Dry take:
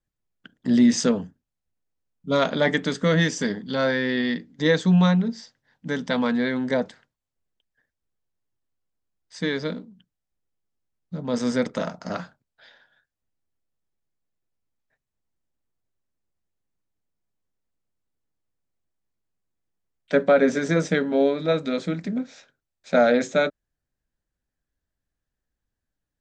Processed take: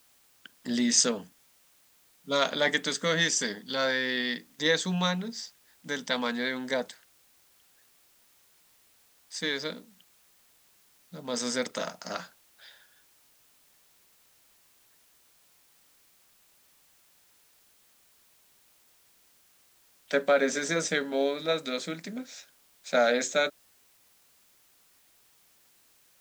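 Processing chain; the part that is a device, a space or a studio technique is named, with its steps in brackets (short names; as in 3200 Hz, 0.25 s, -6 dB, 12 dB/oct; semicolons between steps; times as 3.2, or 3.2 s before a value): turntable without a phono preamp (RIAA curve recording; white noise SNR 30 dB); gain -4 dB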